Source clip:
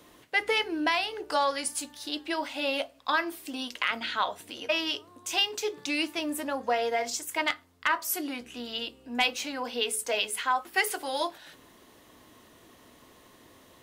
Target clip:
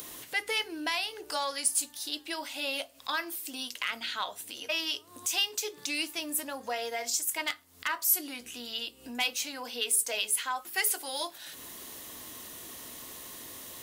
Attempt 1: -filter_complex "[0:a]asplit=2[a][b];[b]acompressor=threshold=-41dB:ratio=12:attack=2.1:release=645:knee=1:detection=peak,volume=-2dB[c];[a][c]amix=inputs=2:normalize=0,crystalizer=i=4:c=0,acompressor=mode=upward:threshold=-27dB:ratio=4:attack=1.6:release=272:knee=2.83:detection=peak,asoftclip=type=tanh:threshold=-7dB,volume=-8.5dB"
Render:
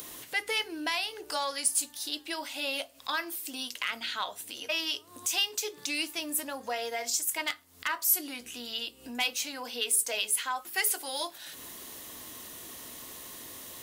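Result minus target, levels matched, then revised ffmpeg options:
compressor: peak gain reduction -6 dB
-filter_complex "[0:a]asplit=2[a][b];[b]acompressor=threshold=-47.5dB:ratio=12:attack=2.1:release=645:knee=1:detection=peak,volume=-2dB[c];[a][c]amix=inputs=2:normalize=0,crystalizer=i=4:c=0,acompressor=mode=upward:threshold=-27dB:ratio=4:attack=1.6:release=272:knee=2.83:detection=peak,asoftclip=type=tanh:threshold=-7dB,volume=-8.5dB"

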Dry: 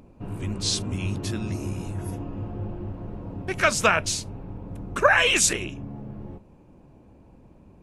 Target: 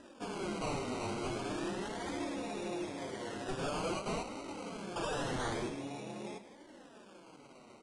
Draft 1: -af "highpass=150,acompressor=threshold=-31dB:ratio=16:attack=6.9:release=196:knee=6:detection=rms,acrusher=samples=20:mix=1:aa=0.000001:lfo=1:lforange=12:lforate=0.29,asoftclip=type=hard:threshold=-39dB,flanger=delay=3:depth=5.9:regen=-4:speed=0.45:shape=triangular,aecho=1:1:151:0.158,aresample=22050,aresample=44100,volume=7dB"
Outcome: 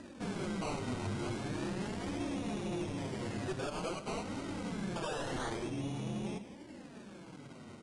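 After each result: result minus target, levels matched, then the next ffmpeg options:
compressor: peak gain reduction +9.5 dB; 125 Hz band +5.0 dB
-af "highpass=150,acompressor=threshold=-21dB:ratio=16:attack=6.9:release=196:knee=6:detection=rms,acrusher=samples=20:mix=1:aa=0.000001:lfo=1:lforange=12:lforate=0.29,asoftclip=type=hard:threshold=-39dB,flanger=delay=3:depth=5.9:regen=-4:speed=0.45:shape=triangular,aecho=1:1:151:0.158,aresample=22050,aresample=44100,volume=7dB"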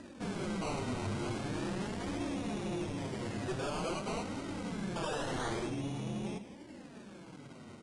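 125 Hz band +4.5 dB
-af "highpass=400,acompressor=threshold=-21dB:ratio=16:attack=6.9:release=196:knee=6:detection=rms,acrusher=samples=20:mix=1:aa=0.000001:lfo=1:lforange=12:lforate=0.29,asoftclip=type=hard:threshold=-39dB,flanger=delay=3:depth=5.9:regen=-4:speed=0.45:shape=triangular,aecho=1:1:151:0.158,aresample=22050,aresample=44100,volume=7dB"

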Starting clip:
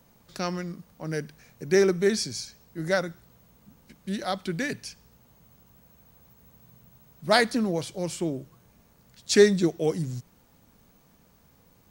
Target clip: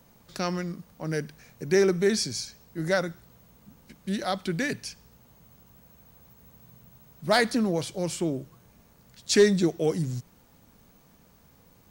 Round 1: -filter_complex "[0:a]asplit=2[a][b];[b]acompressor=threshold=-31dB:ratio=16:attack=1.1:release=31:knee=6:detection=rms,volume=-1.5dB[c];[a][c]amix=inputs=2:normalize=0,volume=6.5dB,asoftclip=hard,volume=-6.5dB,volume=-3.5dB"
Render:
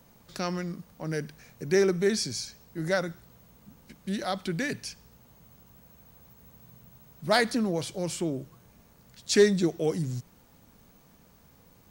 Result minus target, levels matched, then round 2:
compressor: peak gain reduction +9 dB
-filter_complex "[0:a]asplit=2[a][b];[b]acompressor=threshold=-21.5dB:ratio=16:attack=1.1:release=31:knee=6:detection=rms,volume=-1.5dB[c];[a][c]amix=inputs=2:normalize=0,volume=6.5dB,asoftclip=hard,volume=-6.5dB,volume=-3.5dB"

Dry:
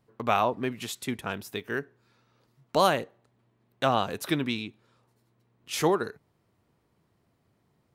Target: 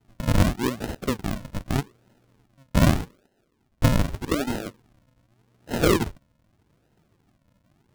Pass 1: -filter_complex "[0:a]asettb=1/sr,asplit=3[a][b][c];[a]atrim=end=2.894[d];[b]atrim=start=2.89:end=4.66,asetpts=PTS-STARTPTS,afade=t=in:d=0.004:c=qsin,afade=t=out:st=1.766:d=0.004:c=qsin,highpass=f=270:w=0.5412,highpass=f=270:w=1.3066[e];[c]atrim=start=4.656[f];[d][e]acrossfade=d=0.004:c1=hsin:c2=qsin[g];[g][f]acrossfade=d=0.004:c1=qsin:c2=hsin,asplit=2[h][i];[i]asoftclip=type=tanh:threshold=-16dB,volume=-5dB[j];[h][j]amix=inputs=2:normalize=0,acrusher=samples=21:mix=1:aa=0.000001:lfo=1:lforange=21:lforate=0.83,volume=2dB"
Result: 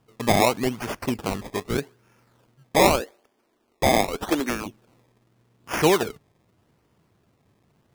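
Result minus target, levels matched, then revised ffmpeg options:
decimation with a swept rate: distortion -16 dB
-filter_complex "[0:a]asettb=1/sr,asplit=3[a][b][c];[a]atrim=end=2.894[d];[b]atrim=start=2.89:end=4.66,asetpts=PTS-STARTPTS,afade=t=in:d=0.004:c=qsin,afade=t=out:st=1.766:d=0.004:c=qsin,highpass=f=270:w=0.5412,highpass=f=270:w=1.3066[e];[c]atrim=start=4.656[f];[d][e]acrossfade=d=0.004:c1=hsin:c2=qsin[g];[g][f]acrossfade=d=0.004:c1=qsin:c2=hsin,asplit=2[h][i];[i]asoftclip=type=tanh:threshold=-16dB,volume=-5dB[j];[h][j]amix=inputs=2:normalize=0,acrusher=samples=76:mix=1:aa=0.000001:lfo=1:lforange=76:lforate=0.83,volume=2dB"

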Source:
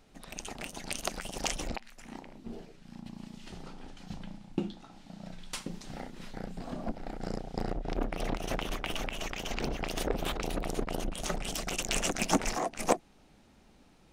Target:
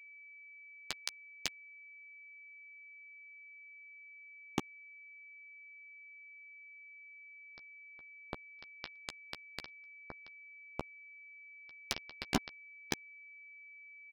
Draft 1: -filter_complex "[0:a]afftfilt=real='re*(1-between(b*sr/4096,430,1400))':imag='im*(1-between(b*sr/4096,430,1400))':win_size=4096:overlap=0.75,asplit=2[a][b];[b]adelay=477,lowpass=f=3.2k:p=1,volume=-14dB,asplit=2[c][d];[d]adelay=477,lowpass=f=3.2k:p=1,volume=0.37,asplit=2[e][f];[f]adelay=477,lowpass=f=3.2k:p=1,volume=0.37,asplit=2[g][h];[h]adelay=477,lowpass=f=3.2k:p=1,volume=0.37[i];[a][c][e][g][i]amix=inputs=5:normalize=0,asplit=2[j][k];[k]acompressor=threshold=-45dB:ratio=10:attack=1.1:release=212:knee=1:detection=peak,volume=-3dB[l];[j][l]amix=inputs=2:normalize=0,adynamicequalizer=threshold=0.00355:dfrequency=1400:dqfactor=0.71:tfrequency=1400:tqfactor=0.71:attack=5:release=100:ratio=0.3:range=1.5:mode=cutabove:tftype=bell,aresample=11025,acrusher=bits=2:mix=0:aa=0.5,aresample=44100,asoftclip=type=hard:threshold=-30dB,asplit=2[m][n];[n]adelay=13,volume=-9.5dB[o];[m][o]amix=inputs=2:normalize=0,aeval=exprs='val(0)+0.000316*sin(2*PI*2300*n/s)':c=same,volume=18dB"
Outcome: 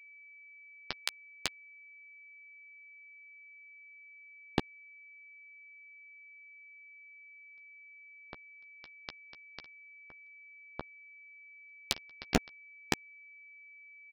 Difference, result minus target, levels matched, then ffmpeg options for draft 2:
compressor: peak gain reduction +6.5 dB; hard clip: distortion -5 dB
-filter_complex "[0:a]afftfilt=real='re*(1-between(b*sr/4096,430,1400))':imag='im*(1-between(b*sr/4096,430,1400))':win_size=4096:overlap=0.75,asplit=2[a][b];[b]adelay=477,lowpass=f=3.2k:p=1,volume=-14dB,asplit=2[c][d];[d]adelay=477,lowpass=f=3.2k:p=1,volume=0.37,asplit=2[e][f];[f]adelay=477,lowpass=f=3.2k:p=1,volume=0.37,asplit=2[g][h];[h]adelay=477,lowpass=f=3.2k:p=1,volume=0.37[i];[a][c][e][g][i]amix=inputs=5:normalize=0,asplit=2[j][k];[k]acompressor=threshold=-38dB:ratio=10:attack=1.1:release=212:knee=1:detection=peak,volume=-3dB[l];[j][l]amix=inputs=2:normalize=0,adynamicequalizer=threshold=0.00355:dfrequency=1400:dqfactor=0.71:tfrequency=1400:tqfactor=0.71:attack=5:release=100:ratio=0.3:range=1.5:mode=cutabove:tftype=bell,aresample=11025,acrusher=bits=2:mix=0:aa=0.5,aresample=44100,asoftclip=type=hard:threshold=-37dB,asplit=2[m][n];[n]adelay=13,volume=-9.5dB[o];[m][o]amix=inputs=2:normalize=0,aeval=exprs='val(0)+0.000316*sin(2*PI*2300*n/s)':c=same,volume=18dB"

